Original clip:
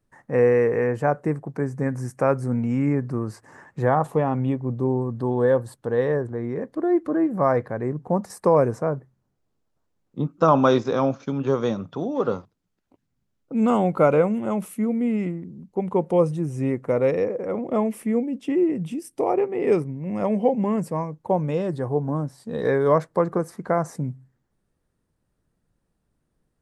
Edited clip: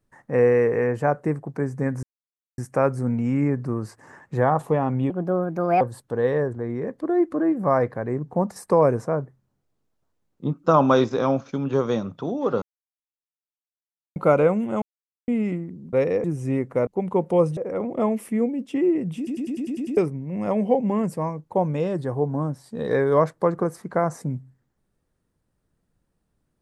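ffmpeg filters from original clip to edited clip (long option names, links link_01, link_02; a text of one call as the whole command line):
ffmpeg -i in.wav -filter_complex "[0:a]asplit=20[link_01][link_02][link_03][link_04][link_05][link_06][link_07][link_08][link_09][link_10][link_11][link_12][link_13][link_14][link_15][link_16][link_17][link_18][link_19][link_20];[link_01]atrim=end=2.03,asetpts=PTS-STARTPTS,afade=type=out:start_time=2.026:duration=0.004:curve=hsin,apad=pad_dur=0.55[link_21];[link_02]atrim=start=2.03:end=4.554,asetpts=PTS-STARTPTS,afade=type=in:duration=0.004:curve=hsin[link_22];[link_03]atrim=start=4.55:end=5.55,asetpts=PTS-STARTPTS,asetrate=62181,aresample=44100[link_23];[link_04]atrim=start=5.546:end=12.36,asetpts=PTS-STARTPTS,afade=type=out:start_time=6.81:duration=0.004:curve=hsin[link_24];[link_05]atrim=start=12.36:end=13.9,asetpts=PTS-STARTPTS,volume=0[link_25];[link_06]atrim=start=13.9:end=14.56,asetpts=PTS-STARTPTS,afade=type=in:duration=0.004:curve=hsin,afade=type=out:start_time=0.656:duration=0.004:curve=hsin[link_26];[link_07]atrim=start=14.56:end=15.02,asetpts=PTS-STARTPTS,volume=0[link_27];[link_08]atrim=start=15.02:end=15.672,asetpts=PTS-STARTPTS,afade=type=in:duration=0.004:curve=hsin[link_28];[link_09]atrim=start=16.998:end=17.312[link_29];[link_10]atrim=start=16.368:end=17.002[link_30];[link_11]atrim=start=15.668:end=16.372[link_31];[link_12]atrim=start=17.308:end=19.012[link_32];[link_13]atrim=start=18.908:end=19.012[link_33];[link_14]atrim=start=18.908:end=19.012[link_34];[link_15]atrim=start=18.908:end=19.012[link_35];[link_16]atrim=start=18.908:end=19.012[link_36];[link_17]atrim=start=18.908:end=19.012[link_37];[link_18]atrim=start=18.908:end=19.012[link_38];[link_19]atrim=start=18.908:end=19.012[link_39];[link_20]atrim=start=19.708[link_40];[link_21][link_22]concat=n=2:v=0:a=1[link_41];[link_41][link_23]acrossfade=duration=0.004:curve1=hsin:curve2=hsin[link_42];[link_24][link_25][link_26][link_27][link_28]concat=n=5:v=0:a=1[link_43];[link_42][link_43]acrossfade=duration=0.004:curve1=hsin:curve2=hsin[link_44];[link_44][link_29]acrossfade=duration=0.004:curve1=hsin:curve2=hsin[link_45];[link_45][link_30]acrossfade=duration=0.004:curve1=hsin:curve2=hsin[link_46];[link_46][link_31]acrossfade=duration=0.004:curve1=hsin:curve2=hsin[link_47];[link_47][link_32]acrossfade=duration=0.004:curve1=hsin:curve2=hsin[link_48];[link_48][link_33]acrossfade=duration=0.004:curve1=hsin:curve2=hsin[link_49];[link_49][link_34]acrossfade=duration=0.004:curve1=hsin:curve2=hsin[link_50];[link_50][link_35]acrossfade=duration=0.004:curve1=hsin:curve2=hsin[link_51];[link_51][link_36]acrossfade=duration=0.004:curve1=hsin:curve2=hsin[link_52];[link_52][link_37]acrossfade=duration=0.004:curve1=hsin:curve2=hsin[link_53];[link_53][link_38]acrossfade=duration=0.004:curve1=hsin:curve2=hsin[link_54];[link_54][link_39]acrossfade=duration=0.004:curve1=hsin:curve2=hsin[link_55];[link_55][link_40]acrossfade=duration=0.004:curve1=hsin:curve2=hsin" out.wav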